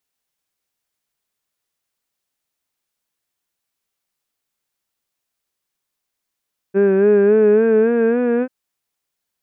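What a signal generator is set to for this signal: formant vowel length 1.74 s, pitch 192 Hz, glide +4.5 st, vibrato 3.6 Hz, vibrato depth 0.6 st, F1 420 Hz, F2 1.6 kHz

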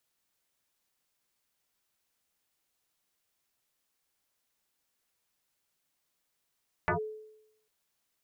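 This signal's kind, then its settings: FM tone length 0.80 s, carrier 432 Hz, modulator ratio 0.61, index 6.6, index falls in 0.11 s linear, decay 0.85 s, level -23 dB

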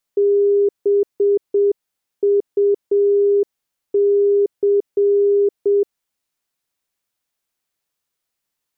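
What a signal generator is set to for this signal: Morse "BUC" 7 wpm 404 Hz -11.5 dBFS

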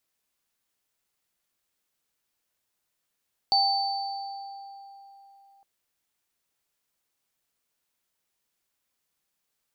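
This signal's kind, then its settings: sine partials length 2.11 s, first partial 791 Hz, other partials 4.54 kHz, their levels 2 dB, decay 3.60 s, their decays 1.90 s, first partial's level -21.5 dB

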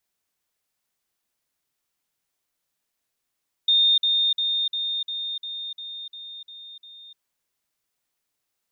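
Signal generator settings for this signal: level ladder 3.65 kHz -15 dBFS, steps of -3 dB, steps 10, 0.30 s 0.05 s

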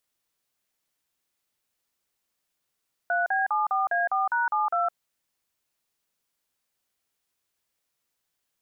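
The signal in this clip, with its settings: DTMF "3B74A4#72", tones 162 ms, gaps 41 ms, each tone -24.5 dBFS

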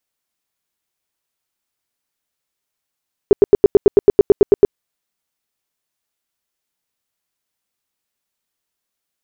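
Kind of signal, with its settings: tone bursts 405 Hz, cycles 8, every 0.11 s, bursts 13, -2.5 dBFS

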